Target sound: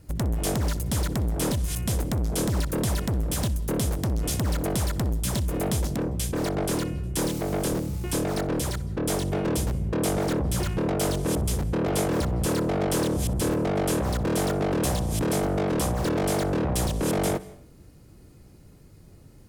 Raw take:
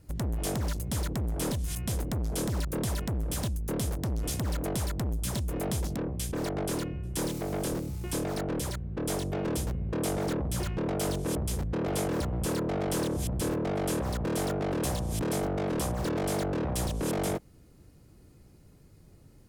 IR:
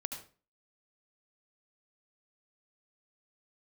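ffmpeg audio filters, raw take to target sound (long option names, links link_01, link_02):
-filter_complex "[0:a]asplit=2[link_01][link_02];[1:a]atrim=start_sample=2205,asetrate=32193,aresample=44100,adelay=62[link_03];[link_02][link_03]afir=irnorm=-1:irlink=0,volume=-19dB[link_04];[link_01][link_04]amix=inputs=2:normalize=0,volume=5dB"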